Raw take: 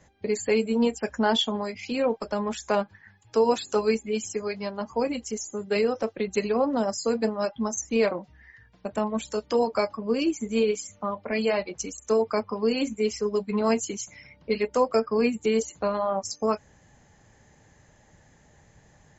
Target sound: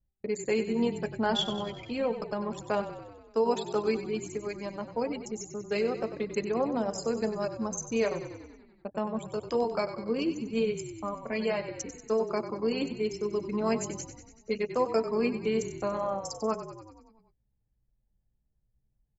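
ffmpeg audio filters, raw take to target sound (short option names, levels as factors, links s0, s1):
-filter_complex "[0:a]anlmdn=6.31,asplit=9[s0][s1][s2][s3][s4][s5][s6][s7][s8];[s1]adelay=95,afreqshift=-31,volume=0.282[s9];[s2]adelay=190,afreqshift=-62,volume=0.178[s10];[s3]adelay=285,afreqshift=-93,volume=0.112[s11];[s4]adelay=380,afreqshift=-124,volume=0.0708[s12];[s5]adelay=475,afreqshift=-155,volume=0.0442[s13];[s6]adelay=570,afreqshift=-186,volume=0.0279[s14];[s7]adelay=665,afreqshift=-217,volume=0.0176[s15];[s8]adelay=760,afreqshift=-248,volume=0.0111[s16];[s0][s9][s10][s11][s12][s13][s14][s15][s16]amix=inputs=9:normalize=0,volume=0.562"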